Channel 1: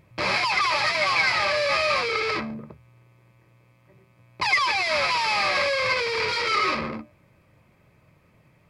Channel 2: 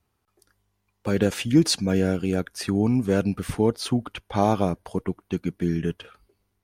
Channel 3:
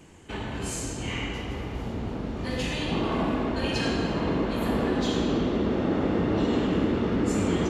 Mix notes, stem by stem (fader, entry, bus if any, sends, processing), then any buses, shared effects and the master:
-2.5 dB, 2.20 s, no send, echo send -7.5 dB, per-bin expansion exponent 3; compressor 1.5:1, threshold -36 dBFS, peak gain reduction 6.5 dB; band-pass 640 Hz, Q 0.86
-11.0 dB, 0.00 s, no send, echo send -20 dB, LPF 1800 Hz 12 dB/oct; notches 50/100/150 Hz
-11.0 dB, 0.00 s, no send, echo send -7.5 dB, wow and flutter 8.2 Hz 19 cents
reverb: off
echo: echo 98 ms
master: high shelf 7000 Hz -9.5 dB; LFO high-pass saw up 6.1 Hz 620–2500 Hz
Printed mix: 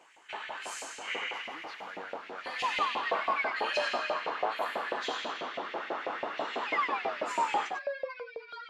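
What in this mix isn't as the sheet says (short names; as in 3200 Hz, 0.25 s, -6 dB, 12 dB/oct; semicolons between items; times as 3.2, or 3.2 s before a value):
stem 1: missing compressor 1.5:1, threshold -36 dBFS, peak gain reduction 6.5 dB; stem 3 -11.0 dB -> -4.0 dB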